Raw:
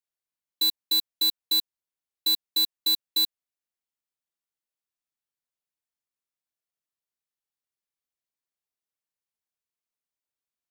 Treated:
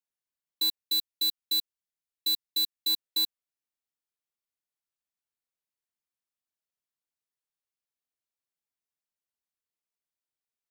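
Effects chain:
0:00.78–0:02.90: parametric band 720 Hz −7 dB 1.8 octaves
level −3.5 dB

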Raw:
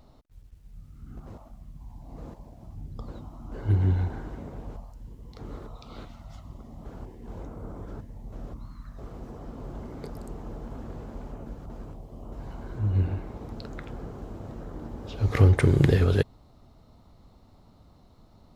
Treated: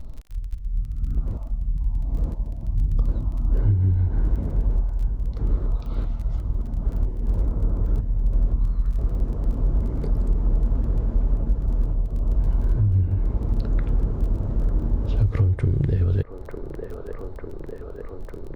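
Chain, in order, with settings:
spectral tilt −2.5 dB per octave
on a send: delay with a band-pass on its return 899 ms, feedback 80%, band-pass 770 Hz, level −13 dB
on the sum: surface crackle 18 per second −38 dBFS
downward compressor 8 to 1, threshold −23 dBFS, peak gain reduction 18 dB
low-shelf EQ 68 Hz +10.5 dB
notch filter 760 Hz, Q 12
level +2.5 dB

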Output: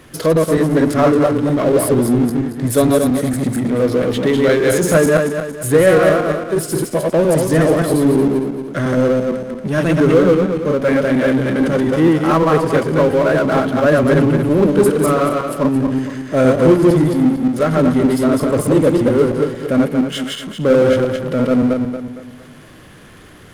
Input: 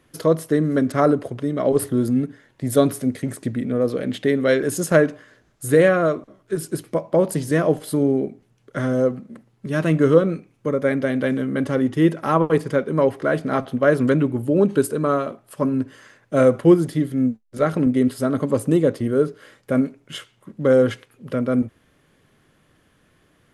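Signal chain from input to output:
feedback delay that plays each chunk backwards 115 ms, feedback 51%, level −1 dB
power curve on the samples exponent 0.7
level −1 dB

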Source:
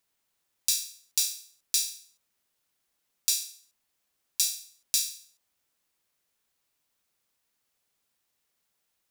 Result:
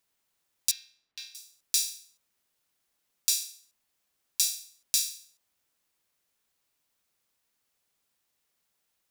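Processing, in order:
0:00.71–0:01.35: high-frequency loss of the air 320 metres

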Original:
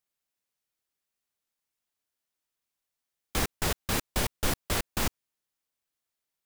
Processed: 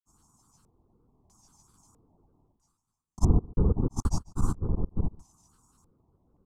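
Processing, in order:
source passing by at 0:02.72, 20 m/s, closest 20 metres
elliptic band-stop filter 1,100–7,200 Hz, stop band 40 dB
bass and treble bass +8 dB, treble +5 dB
comb filter 0.9 ms, depth 95%
reversed playback
upward compression, threshold −25 dBFS
reversed playback
granular cloud, pitch spread up and down by 3 semitones
on a send: single-tap delay 142 ms −23.5 dB
on the sum: auto-filter low-pass square 0.77 Hz 510–4,800 Hz

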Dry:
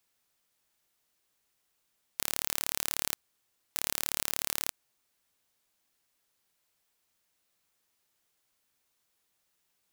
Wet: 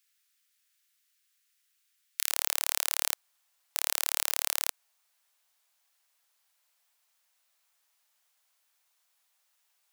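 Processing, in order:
high-pass filter 1,500 Hz 24 dB per octave, from 0:02.30 630 Hz
level +3 dB

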